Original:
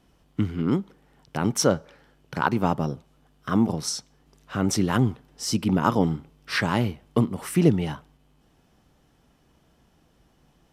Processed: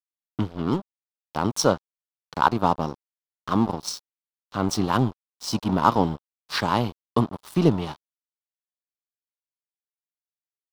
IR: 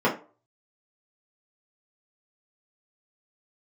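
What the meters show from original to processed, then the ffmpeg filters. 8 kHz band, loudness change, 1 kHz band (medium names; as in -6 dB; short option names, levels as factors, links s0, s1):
-3.0 dB, 0.0 dB, +5.0 dB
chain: -af "aeval=exprs='sgn(val(0))*max(abs(val(0))-0.0224,0)':c=same,equalizer=f=1000:t=o:w=1:g=9,equalizer=f=2000:t=o:w=1:g=-7,equalizer=f=4000:t=o:w=1:g=8,equalizer=f=8000:t=o:w=1:g=-3"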